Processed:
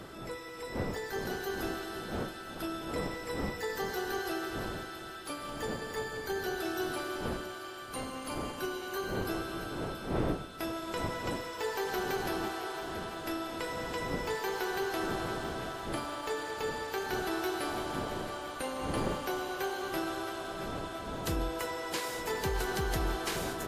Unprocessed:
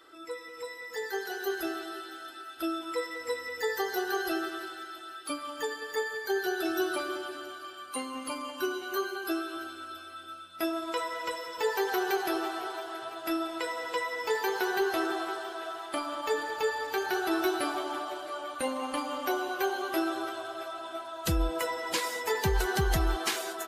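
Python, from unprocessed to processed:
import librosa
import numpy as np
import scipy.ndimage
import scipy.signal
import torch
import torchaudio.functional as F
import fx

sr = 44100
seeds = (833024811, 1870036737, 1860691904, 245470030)

y = fx.bin_compress(x, sr, power=0.6)
y = fx.dmg_wind(y, sr, seeds[0], corner_hz=460.0, level_db=-34.0)
y = y + 10.0 ** (-21.5 / 20.0) * np.pad(y, (int(145 * sr / 1000.0), 0))[:len(y)]
y = y * 10.0 ** (-8.0 / 20.0)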